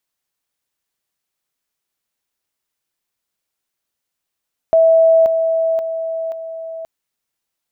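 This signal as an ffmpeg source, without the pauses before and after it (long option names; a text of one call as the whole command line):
ffmpeg -f lavfi -i "aevalsrc='pow(10,(-7.5-6*floor(t/0.53))/20)*sin(2*PI*653*t)':duration=2.12:sample_rate=44100" out.wav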